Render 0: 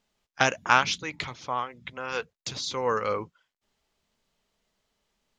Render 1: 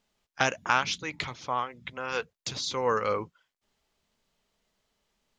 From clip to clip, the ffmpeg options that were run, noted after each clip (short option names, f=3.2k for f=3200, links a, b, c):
-af "alimiter=limit=-8.5dB:level=0:latency=1:release=423"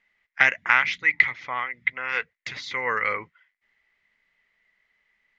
-af "crystalizer=i=7:c=0,lowpass=f=2k:t=q:w=12,volume=-6.5dB"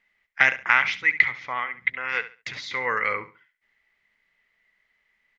-af "aecho=1:1:69|138|207:0.2|0.0479|0.0115"